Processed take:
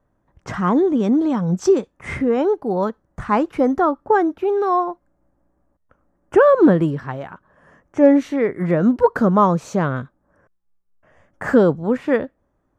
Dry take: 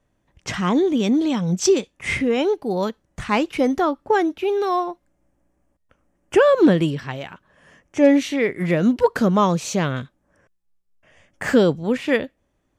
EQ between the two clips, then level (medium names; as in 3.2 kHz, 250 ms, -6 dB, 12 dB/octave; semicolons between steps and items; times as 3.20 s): resonant high shelf 1.9 kHz -11 dB, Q 1.5; +1.5 dB